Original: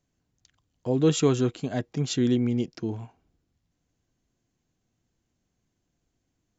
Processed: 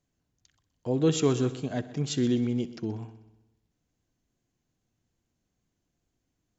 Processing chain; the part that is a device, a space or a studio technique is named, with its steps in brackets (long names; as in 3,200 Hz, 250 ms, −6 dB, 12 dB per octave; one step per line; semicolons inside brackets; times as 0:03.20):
multi-head tape echo (echo machine with several playback heads 63 ms, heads first and second, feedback 51%, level −18.5 dB; tape wow and flutter 23 cents)
level −2.5 dB